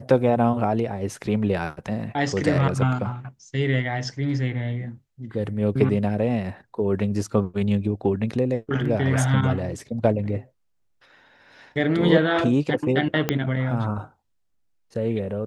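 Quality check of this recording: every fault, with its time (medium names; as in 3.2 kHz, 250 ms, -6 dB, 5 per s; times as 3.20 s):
13.29 s: pop -6 dBFS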